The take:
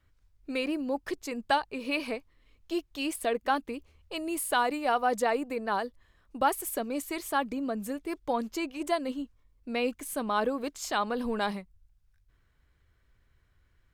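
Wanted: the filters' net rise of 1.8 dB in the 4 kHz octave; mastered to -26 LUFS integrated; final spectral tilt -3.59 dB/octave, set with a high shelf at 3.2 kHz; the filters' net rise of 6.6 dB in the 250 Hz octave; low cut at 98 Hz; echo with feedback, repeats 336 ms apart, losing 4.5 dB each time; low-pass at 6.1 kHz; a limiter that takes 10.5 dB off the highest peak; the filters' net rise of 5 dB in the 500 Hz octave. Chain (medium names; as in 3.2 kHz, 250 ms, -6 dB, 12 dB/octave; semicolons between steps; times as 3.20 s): high-pass 98 Hz; low-pass 6.1 kHz; peaking EQ 250 Hz +6.5 dB; peaking EQ 500 Hz +4.5 dB; treble shelf 3.2 kHz -5 dB; peaking EQ 4 kHz +6.5 dB; peak limiter -21 dBFS; feedback delay 336 ms, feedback 60%, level -4.5 dB; trim +3.5 dB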